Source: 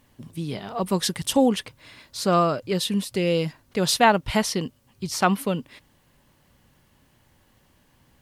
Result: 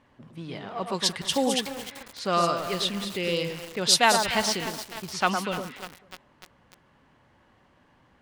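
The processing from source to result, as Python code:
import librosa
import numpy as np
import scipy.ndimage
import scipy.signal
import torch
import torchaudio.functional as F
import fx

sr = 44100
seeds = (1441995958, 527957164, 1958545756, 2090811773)

y = fx.law_mismatch(x, sr, coded='mu')
y = fx.high_shelf(y, sr, hz=4900.0, db=8.5)
y = fx.echo_alternate(y, sr, ms=110, hz=1500.0, feedback_pct=51, wet_db=-5.0)
y = fx.env_lowpass(y, sr, base_hz=1400.0, full_db=-9.0)
y = fx.tilt_eq(y, sr, slope=2.5)
y = fx.echo_crushed(y, sr, ms=297, feedback_pct=80, bits=4, wet_db=-11)
y = y * 10.0 ** (-4.0 / 20.0)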